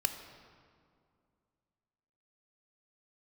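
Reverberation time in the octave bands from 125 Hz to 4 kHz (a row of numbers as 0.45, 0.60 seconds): 2.7, 2.7, 2.4, 2.2, 1.6, 1.3 seconds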